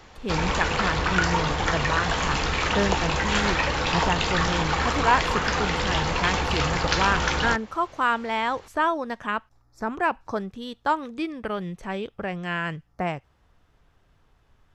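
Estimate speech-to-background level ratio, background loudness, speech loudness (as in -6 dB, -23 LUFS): -4.0 dB, -24.5 LUFS, -28.5 LUFS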